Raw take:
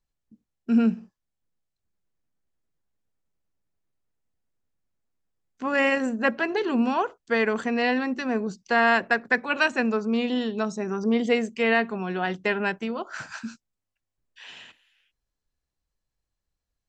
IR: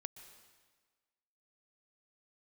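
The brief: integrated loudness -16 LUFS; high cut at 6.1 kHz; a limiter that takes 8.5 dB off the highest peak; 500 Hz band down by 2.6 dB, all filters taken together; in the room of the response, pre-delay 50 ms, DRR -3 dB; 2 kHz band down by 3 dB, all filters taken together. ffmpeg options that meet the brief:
-filter_complex "[0:a]lowpass=6100,equalizer=f=500:t=o:g=-3,equalizer=f=2000:t=o:g=-3.5,alimiter=limit=0.126:level=0:latency=1,asplit=2[s0][s1];[1:a]atrim=start_sample=2205,adelay=50[s2];[s1][s2]afir=irnorm=-1:irlink=0,volume=2.24[s3];[s0][s3]amix=inputs=2:normalize=0,volume=2.82"

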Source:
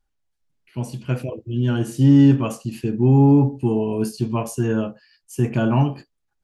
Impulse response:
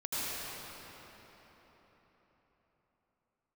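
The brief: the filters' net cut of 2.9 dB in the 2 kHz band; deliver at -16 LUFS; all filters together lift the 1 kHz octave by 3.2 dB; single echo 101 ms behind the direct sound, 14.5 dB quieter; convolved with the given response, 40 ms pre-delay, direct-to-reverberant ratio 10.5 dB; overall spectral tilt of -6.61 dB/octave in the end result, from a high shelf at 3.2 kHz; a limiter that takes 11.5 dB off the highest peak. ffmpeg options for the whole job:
-filter_complex "[0:a]equalizer=f=1000:t=o:g=5.5,equalizer=f=2000:t=o:g=-6,highshelf=f=3200:g=-4.5,alimiter=limit=0.158:level=0:latency=1,aecho=1:1:101:0.188,asplit=2[s0][s1];[1:a]atrim=start_sample=2205,adelay=40[s2];[s1][s2]afir=irnorm=-1:irlink=0,volume=0.133[s3];[s0][s3]amix=inputs=2:normalize=0,volume=2.99"

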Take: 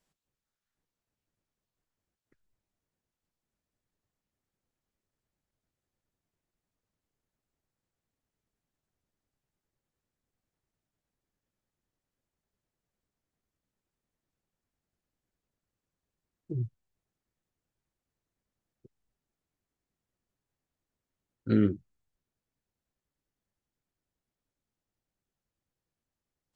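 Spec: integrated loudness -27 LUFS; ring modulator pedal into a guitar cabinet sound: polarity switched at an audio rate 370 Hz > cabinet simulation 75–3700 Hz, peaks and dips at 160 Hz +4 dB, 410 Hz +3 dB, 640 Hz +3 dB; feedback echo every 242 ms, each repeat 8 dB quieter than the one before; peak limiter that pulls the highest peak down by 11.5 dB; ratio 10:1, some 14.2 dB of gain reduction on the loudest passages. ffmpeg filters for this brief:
-af "acompressor=threshold=0.0224:ratio=10,alimiter=level_in=3.98:limit=0.0631:level=0:latency=1,volume=0.251,aecho=1:1:242|484|726|968|1210:0.398|0.159|0.0637|0.0255|0.0102,aeval=exprs='val(0)*sgn(sin(2*PI*370*n/s))':c=same,highpass=75,equalizer=f=160:t=q:w=4:g=4,equalizer=f=410:t=q:w=4:g=3,equalizer=f=640:t=q:w=4:g=3,lowpass=f=3700:w=0.5412,lowpass=f=3700:w=1.3066,volume=12.6"

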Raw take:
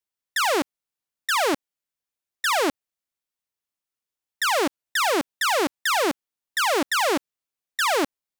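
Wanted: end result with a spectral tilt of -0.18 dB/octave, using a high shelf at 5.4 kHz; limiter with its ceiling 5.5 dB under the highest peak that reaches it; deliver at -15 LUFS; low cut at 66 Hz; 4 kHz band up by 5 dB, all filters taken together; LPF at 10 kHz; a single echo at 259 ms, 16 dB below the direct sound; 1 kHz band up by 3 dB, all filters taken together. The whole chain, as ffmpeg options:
-af "highpass=66,lowpass=10000,equalizer=f=1000:t=o:g=3.5,equalizer=f=4000:t=o:g=8,highshelf=f=5400:g=-4.5,alimiter=limit=0.188:level=0:latency=1,aecho=1:1:259:0.158,volume=2.99"

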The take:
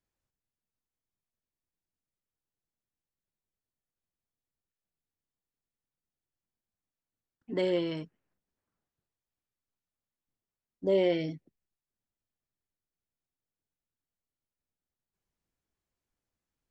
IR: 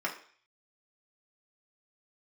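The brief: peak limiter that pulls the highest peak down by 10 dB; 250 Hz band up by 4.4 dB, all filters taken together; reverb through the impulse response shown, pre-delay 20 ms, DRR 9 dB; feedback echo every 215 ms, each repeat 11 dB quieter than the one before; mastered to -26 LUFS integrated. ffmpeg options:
-filter_complex "[0:a]equalizer=f=250:t=o:g=8,alimiter=level_in=1.06:limit=0.0631:level=0:latency=1,volume=0.944,aecho=1:1:215|430|645:0.282|0.0789|0.0221,asplit=2[s0][s1];[1:a]atrim=start_sample=2205,adelay=20[s2];[s1][s2]afir=irnorm=-1:irlink=0,volume=0.158[s3];[s0][s3]amix=inputs=2:normalize=0,volume=2.51"

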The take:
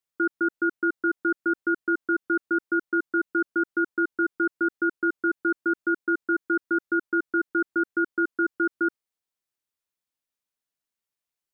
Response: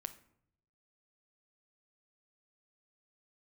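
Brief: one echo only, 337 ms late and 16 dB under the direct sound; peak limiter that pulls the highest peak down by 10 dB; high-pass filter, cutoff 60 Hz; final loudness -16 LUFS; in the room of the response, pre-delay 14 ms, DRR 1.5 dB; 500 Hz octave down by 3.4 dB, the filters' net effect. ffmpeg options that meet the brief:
-filter_complex "[0:a]highpass=60,equalizer=f=500:t=o:g=-7.5,alimiter=level_in=1.5:limit=0.0631:level=0:latency=1,volume=0.668,aecho=1:1:337:0.158,asplit=2[s0][s1];[1:a]atrim=start_sample=2205,adelay=14[s2];[s1][s2]afir=irnorm=-1:irlink=0,volume=1.19[s3];[s0][s3]amix=inputs=2:normalize=0,volume=7.08"

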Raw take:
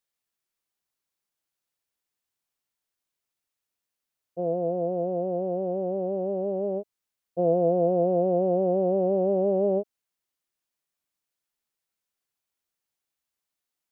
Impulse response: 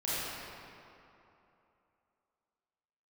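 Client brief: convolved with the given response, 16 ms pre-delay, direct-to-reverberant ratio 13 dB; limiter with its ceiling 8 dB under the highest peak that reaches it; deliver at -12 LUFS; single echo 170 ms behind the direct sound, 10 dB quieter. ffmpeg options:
-filter_complex "[0:a]alimiter=limit=0.0891:level=0:latency=1,aecho=1:1:170:0.316,asplit=2[s0][s1];[1:a]atrim=start_sample=2205,adelay=16[s2];[s1][s2]afir=irnorm=-1:irlink=0,volume=0.0944[s3];[s0][s3]amix=inputs=2:normalize=0,volume=6.68"

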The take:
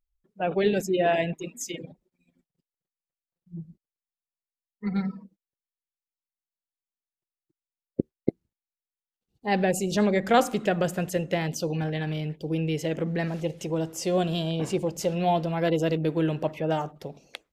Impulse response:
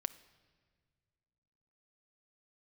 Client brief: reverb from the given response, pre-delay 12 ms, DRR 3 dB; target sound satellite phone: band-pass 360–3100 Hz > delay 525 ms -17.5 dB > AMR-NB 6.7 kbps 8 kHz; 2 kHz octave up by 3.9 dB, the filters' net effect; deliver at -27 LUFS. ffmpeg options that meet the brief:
-filter_complex "[0:a]equalizer=f=2000:t=o:g=5.5,asplit=2[s0][s1];[1:a]atrim=start_sample=2205,adelay=12[s2];[s1][s2]afir=irnorm=-1:irlink=0,volume=0.794[s3];[s0][s3]amix=inputs=2:normalize=0,highpass=360,lowpass=3100,aecho=1:1:525:0.133,volume=1.19" -ar 8000 -c:a libopencore_amrnb -b:a 6700

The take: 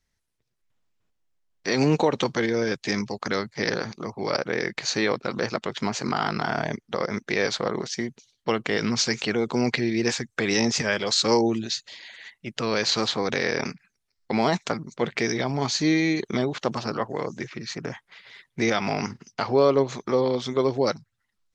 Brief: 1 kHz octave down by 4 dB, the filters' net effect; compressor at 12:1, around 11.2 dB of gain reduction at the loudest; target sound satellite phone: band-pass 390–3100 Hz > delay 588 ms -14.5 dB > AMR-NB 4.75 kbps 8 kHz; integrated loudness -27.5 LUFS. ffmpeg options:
-af "equalizer=f=1000:t=o:g=-5,acompressor=threshold=0.0447:ratio=12,highpass=390,lowpass=3100,aecho=1:1:588:0.188,volume=3.98" -ar 8000 -c:a libopencore_amrnb -b:a 4750

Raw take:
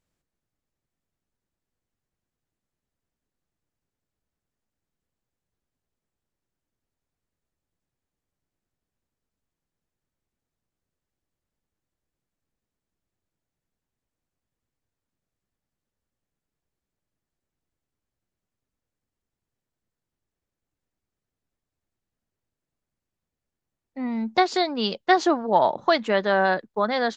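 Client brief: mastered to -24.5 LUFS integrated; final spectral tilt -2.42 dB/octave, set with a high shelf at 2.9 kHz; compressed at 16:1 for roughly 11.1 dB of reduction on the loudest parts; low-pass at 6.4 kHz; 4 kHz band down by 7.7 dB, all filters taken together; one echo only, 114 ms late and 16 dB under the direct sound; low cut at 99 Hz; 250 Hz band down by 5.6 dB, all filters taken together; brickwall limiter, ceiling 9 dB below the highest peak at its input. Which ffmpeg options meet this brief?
-af "highpass=99,lowpass=6400,equalizer=f=250:t=o:g=-8,highshelf=f=2900:g=-4,equalizer=f=4000:t=o:g=-6,acompressor=threshold=0.0501:ratio=16,alimiter=limit=0.0668:level=0:latency=1,aecho=1:1:114:0.158,volume=3.35"

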